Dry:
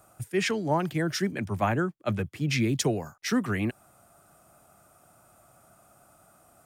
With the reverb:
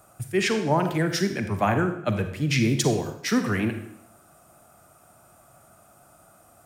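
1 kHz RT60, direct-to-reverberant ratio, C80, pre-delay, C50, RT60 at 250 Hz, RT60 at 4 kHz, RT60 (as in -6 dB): 0.75 s, 7.0 dB, 10.5 dB, 36 ms, 8.5 dB, 0.80 s, 0.65 s, 0.75 s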